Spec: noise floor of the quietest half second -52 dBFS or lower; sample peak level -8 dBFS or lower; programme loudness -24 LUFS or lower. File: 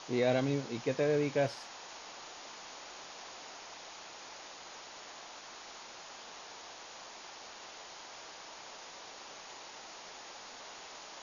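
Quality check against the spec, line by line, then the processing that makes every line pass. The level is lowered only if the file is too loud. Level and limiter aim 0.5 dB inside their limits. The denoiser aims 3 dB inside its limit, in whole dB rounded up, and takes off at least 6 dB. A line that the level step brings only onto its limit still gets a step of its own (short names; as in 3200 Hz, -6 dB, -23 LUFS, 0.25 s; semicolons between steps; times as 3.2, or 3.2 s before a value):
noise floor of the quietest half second -50 dBFS: fail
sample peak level -17.0 dBFS: OK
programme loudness -40.0 LUFS: OK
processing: denoiser 6 dB, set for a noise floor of -50 dBFS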